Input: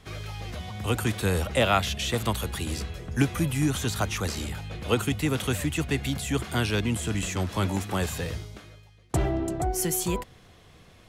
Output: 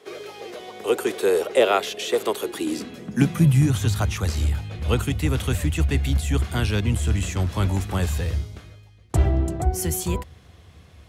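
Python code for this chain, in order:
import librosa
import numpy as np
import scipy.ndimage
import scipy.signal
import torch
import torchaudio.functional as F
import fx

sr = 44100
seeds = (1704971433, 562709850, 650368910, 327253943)

y = fx.octave_divider(x, sr, octaves=1, level_db=-6.0)
y = fx.filter_sweep_highpass(y, sr, from_hz=410.0, to_hz=71.0, start_s=2.36, end_s=4.17, q=5.3)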